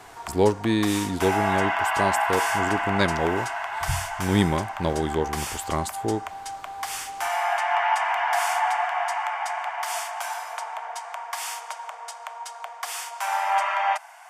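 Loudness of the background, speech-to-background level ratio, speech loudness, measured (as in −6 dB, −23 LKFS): −27.5 LKFS, 1.0 dB, −26.5 LKFS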